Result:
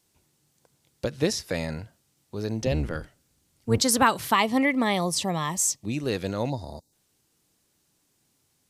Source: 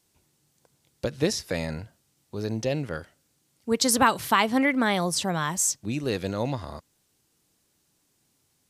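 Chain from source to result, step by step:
0:02.61–0:03.81: sub-octave generator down 1 octave, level +2 dB
0:04.34–0:05.97: Butterworth band-reject 1,500 Hz, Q 3.8
0:06.49–0:06.93: gain on a spectral selection 980–3,600 Hz −19 dB

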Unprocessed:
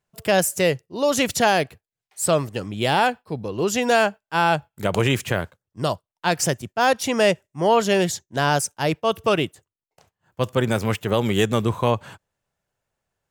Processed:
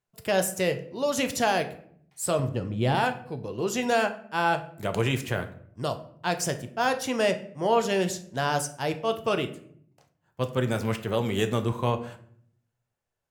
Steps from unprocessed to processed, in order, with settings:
0:02.39–0:02.95: spectral tilt −2.5 dB per octave
convolution reverb RT60 0.65 s, pre-delay 8 ms, DRR 7 dB
level −7 dB

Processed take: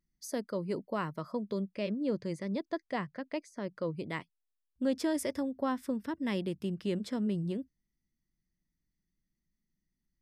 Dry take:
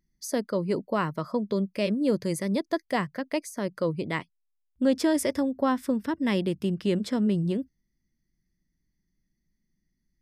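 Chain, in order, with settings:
0:01.74–0:03.94: high-frequency loss of the air 90 metres
level −7.5 dB

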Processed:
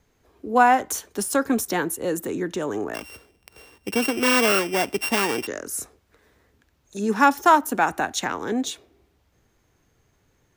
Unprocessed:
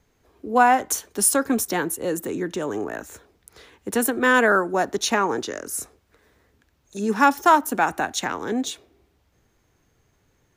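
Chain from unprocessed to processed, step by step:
0:02.94–0:05.47: samples sorted by size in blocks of 16 samples
de-essing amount 35%

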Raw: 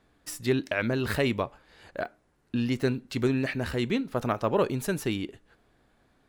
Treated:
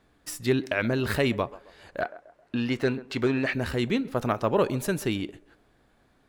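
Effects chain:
feedback echo with a band-pass in the loop 133 ms, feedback 42%, band-pass 610 Hz, level −17.5 dB
0:02.01–0:03.53: mid-hump overdrive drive 11 dB, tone 2,200 Hz, clips at −14 dBFS
level +1.5 dB

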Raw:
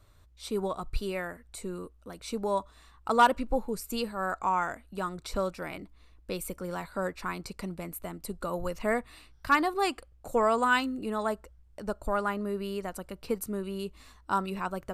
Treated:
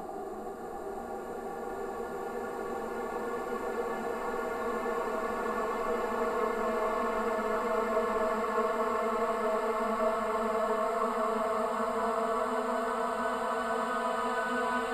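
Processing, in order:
delay that swaps between a low-pass and a high-pass 420 ms, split 1,000 Hz, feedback 78%, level −6 dB
extreme stretch with random phases 33×, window 0.50 s, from 0:10.17
level −6 dB

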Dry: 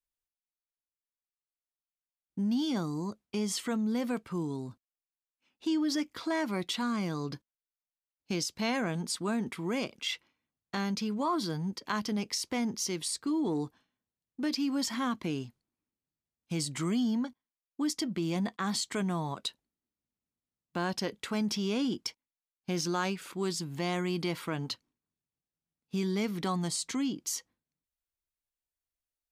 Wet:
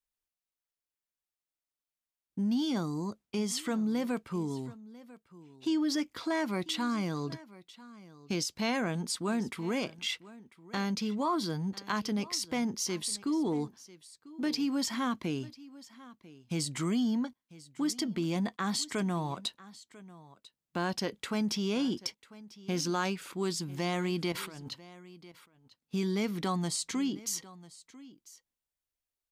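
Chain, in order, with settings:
0:24.32–0:24.72: compressor whose output falls as the input rises −43 dBFS, ratio −1
single-tap delay 995 ms −19.5 dB

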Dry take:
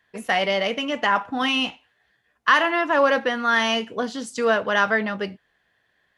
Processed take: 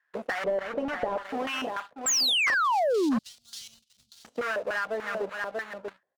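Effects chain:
each half-wave held at its own peak
0:02.54–0:04.25: inverse Chebyshev band-stop filter 280–1,800 Hz, stop band 50 dB
on a send: single-tap delay 639 ms −11.5 dB
on the sum: auto-filter band-pass square 3.4 Hz 550–1,500 Hz
soft clipping −9 dBFS, distortion −23 dB
downward compressor 6 to 1, threshold −31 dBFS, peak gain reduction 14 dB
0:02.06–0:03.19: sound drawn into the spectrogram fall 210–7,800 Hz −26 dBFS
leveller curve on the samples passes 2
0:00.44–0:01.23: spectral tilt −2.5 dB per octave
level −4 dB

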